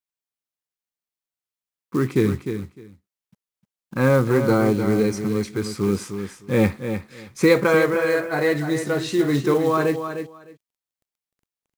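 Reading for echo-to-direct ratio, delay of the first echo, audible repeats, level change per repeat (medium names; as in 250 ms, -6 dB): -8.5 dB, 304 ms, 2, -16.0 dB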